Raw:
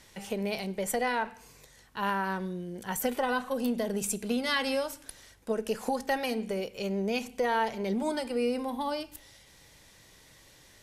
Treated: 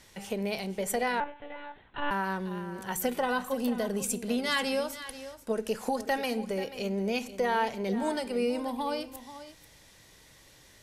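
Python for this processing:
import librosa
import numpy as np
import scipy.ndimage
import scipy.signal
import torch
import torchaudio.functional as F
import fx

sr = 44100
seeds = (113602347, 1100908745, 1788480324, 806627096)

y = x + 10.0 ** (-13.5 / 20.0) * np.pad(x, (int(486 * sr / 1000.0), 0))[:len(x)]
y = fx.lpc_monotone(y, sr, seeds[0], pitch_hz=290.0, order=16, at=(1.2, 2.11))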